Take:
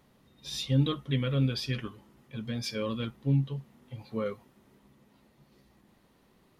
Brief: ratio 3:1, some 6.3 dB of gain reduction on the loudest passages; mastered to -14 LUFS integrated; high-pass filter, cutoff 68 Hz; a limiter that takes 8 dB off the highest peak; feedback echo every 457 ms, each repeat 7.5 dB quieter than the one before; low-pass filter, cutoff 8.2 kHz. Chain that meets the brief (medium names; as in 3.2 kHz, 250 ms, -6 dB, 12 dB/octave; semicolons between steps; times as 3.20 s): high-pass 68 Hz; low-pass 8.2 kHz; compression 3:1, threshold -29 dBFS; peak limiter -27.5 dBFS; feedback delay 457 ms, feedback 42%, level -7.5 dB; trim +24 dB